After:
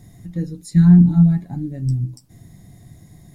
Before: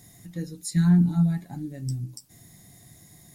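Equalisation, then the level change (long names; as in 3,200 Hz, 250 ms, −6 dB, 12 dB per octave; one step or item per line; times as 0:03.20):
spectral tilt −2.5 dB per octave
+2.5 dB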